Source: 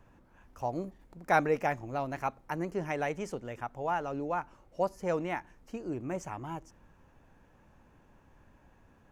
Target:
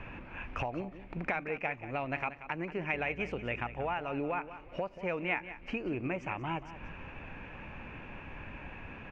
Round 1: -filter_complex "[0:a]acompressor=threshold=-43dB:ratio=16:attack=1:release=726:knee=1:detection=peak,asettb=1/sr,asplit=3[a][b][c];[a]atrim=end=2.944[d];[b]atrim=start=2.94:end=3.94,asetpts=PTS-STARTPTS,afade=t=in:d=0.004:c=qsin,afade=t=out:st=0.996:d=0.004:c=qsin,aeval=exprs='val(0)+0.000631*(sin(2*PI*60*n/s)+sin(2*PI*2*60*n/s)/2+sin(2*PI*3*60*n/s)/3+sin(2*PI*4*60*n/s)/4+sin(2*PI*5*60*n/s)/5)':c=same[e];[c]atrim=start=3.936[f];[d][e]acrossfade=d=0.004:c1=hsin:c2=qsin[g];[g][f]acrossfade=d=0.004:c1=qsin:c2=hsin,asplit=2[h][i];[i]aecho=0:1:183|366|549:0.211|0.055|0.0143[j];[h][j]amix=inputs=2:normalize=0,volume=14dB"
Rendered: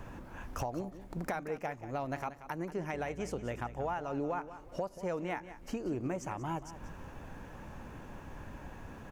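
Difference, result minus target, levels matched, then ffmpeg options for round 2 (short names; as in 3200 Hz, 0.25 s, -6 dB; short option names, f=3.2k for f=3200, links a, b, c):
2000 Hz band -6.5 dB
-filter_complex "[0:a]acompressor=threshold=-43dB:ratio=16:attack=1:release=726:knee=1:detection=peak,lowpass=f=2.5k:t=q:w=6.3,asettb=1/sr,asplit=3[a][b][c];[a]atrim=end=2.944[d];[b]atrim=start=2.94:end=3.94,asetpts=PTS-STARTPTS,afade=t=in:d=0.004:c=qsin,afade=t=out:st=0.996:d=0.004:c=qsin,aeval=exprs='val(0)+0.000631*(sin(2*PI*60*n/s)+sin(2*PI*2*60*n/s)/2+sin(2*PI*3*60*n/s)/3+sin(2*PI*4*60*n/s)/4+sin(2*PI*5*60*n/s)/5)':c=same[e];[c]atrim=start=3.936[f];[d][e]acrossfade=d=0.004:c1=hsin:c2=qsin[g];[g][f]acrossfade=d=0.004:c1=qsin:c2=hsin,asplit=2[h][i];[i]aecho=0:1:183|366|549:0.211|0.055|0.0143[j];[h][j]amix=inputs=2:normalize=0,volume=14dB"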